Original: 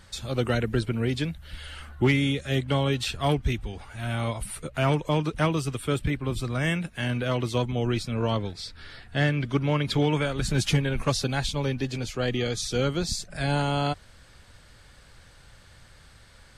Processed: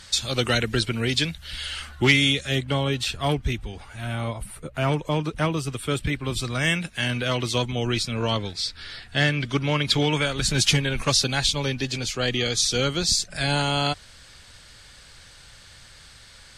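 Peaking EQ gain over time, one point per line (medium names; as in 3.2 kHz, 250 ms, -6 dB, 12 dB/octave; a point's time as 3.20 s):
peaking EQ 5.2 kHz 2.9 oct
2.28 s +14.5 dB
2.69 s +3.5 dB
3.95 s +3.5 dB
4.57 s -6.5 dB
4.86 s +1.5 dB
5.58 s +1.5 dB
6.28 s +10.5 dB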